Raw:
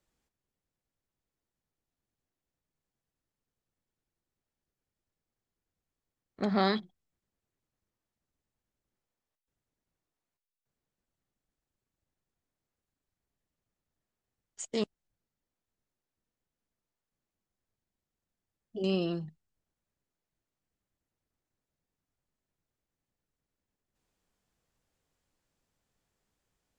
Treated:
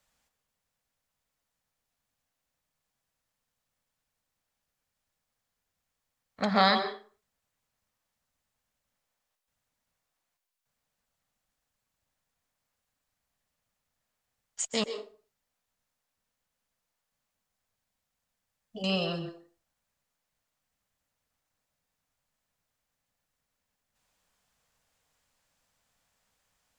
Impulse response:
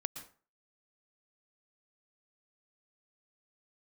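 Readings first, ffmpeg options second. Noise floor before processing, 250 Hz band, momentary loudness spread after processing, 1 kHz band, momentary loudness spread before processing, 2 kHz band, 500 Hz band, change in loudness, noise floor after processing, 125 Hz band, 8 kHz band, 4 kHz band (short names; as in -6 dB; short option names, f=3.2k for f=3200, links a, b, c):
under -85 dBFS, -0.5 dB, 19 LU, +7.5 dB, 15 LU, +8.5 dB, +1.0 dB, +3.5 dB, -85 dBFS, 0.0 dB, +8.5 dB, +8.5 dB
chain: -filter_complex "[0:a]asplit=2[a][b];[b]highpass=f=370:w=0.5412,highpass=f=370:w=1.3066[c];[1:a]atrim=start_sample=2205,asetrate=41454,aresample=44100[d];[c][d]afir=irnorm=-1:irlink=0,volume=5dB[e];[a][e]amix=inputs=2:normalize=0"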